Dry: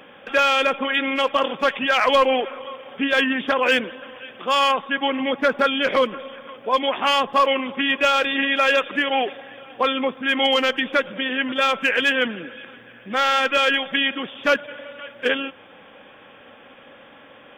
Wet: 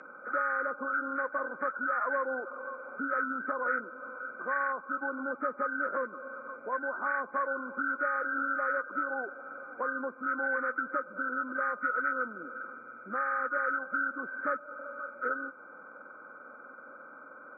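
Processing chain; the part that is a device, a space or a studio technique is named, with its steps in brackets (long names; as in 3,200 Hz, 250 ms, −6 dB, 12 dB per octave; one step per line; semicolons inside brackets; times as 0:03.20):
hearing aid with frequency lowering (hearing-aid frequency compression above 1,200 Hz 4 to 1; downward compressor 2 to 1, threshold −32 dBFS, peak gain reduction 11 dB; loudspeaker in its box 290–6,800 Hz, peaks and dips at 430 Hz −4 dB, 770 Hz −8 dB, 1,700 Hz +4 dB, 4,600 Hz −6 dB)
level −3.5 dB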